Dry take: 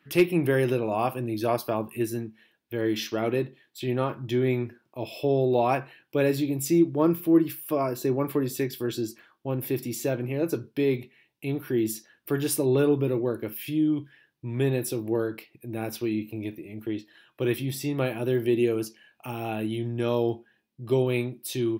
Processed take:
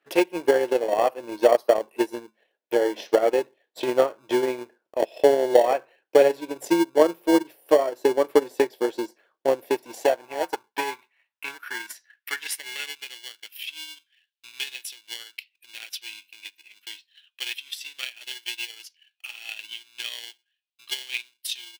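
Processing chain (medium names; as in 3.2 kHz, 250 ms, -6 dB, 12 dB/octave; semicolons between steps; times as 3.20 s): treble shelf 11 kHz -11 dB; in parallel at -7 dB: sample-and-hold 35×; on the sum: level rider gain up to 6 dB; high-pass sweep 520 Hz -> 3 kHz, 9.56–13.25 s; transient shaper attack +10 dB, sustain -8 dB; trim -8 dB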